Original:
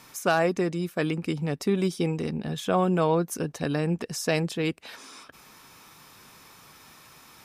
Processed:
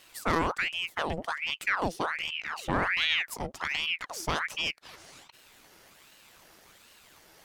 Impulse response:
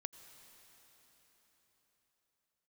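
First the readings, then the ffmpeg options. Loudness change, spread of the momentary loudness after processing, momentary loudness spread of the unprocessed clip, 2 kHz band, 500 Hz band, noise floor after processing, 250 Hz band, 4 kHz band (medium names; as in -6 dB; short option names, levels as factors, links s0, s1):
-3.0 dB, 8 LU, 8 LU, +5.0 dB, -10.5 dB, -58 dBFS, -11.5 dB, +6.5 dB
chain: -af "aeval=exprs='if(lt(val(0),0),0.447*val(0),val(0))':c=same,aeval=exprs='val(0)*sin(2*PI*1600*n/s+1600*0.8/1.3*sin(2*PI*1.3*n/s))':c=same"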